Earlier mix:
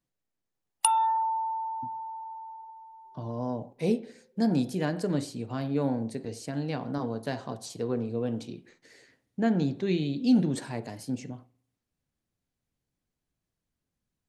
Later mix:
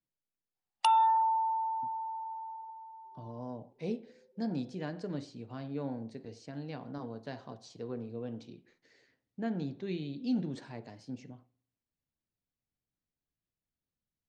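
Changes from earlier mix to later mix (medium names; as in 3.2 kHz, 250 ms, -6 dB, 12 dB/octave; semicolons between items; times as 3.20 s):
speech -9.5 dB; master: add low-pass 6 kHz 24 dB/octave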